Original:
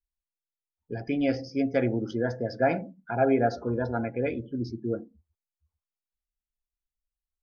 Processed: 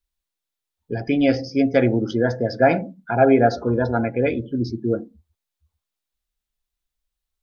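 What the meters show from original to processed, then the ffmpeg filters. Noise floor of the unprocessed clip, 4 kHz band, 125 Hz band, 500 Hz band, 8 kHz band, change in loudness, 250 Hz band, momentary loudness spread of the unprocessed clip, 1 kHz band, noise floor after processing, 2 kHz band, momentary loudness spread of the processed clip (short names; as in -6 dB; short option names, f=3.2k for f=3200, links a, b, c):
under -85 dBFS, +9.5 dB, +8.0 dB, +8.0 dB, n/a, +8.0 dB, +8.0 dB, 9 LU, +8.0 dB, -85 dBFS, +8.0 dB, 9 LU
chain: -af "equalizer=f=3.7k:t=o:w=0.44:g=4.5,volume=8dB"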